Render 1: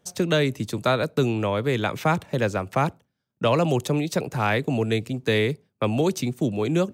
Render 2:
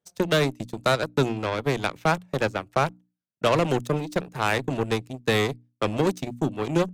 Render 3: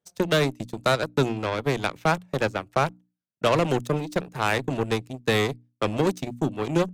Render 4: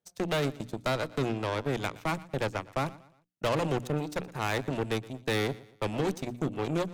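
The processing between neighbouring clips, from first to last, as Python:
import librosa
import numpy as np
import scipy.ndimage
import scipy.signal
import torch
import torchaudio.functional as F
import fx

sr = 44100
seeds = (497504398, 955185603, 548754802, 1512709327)

y1 = fx.wow_flutter(x, sr, seeds[0], rate_hz=2.1, depth_cents=25.0)
y1 = fx.cheby_harmonics(y1, sr, harmonics=(7,), levels_db=(-18,), full_scale_db=-9.0)
y1 = fx.hum_notches(y1, sr, base_hz=60, count=5)
y2 = y1
y3 = fx.tube_stage(y2, sr, drive_db=23.0, bias=0.6)
y3 = fx.echo_feedback(y3, sr, ms=118, feedback_pct=38, wet_db=-20.0)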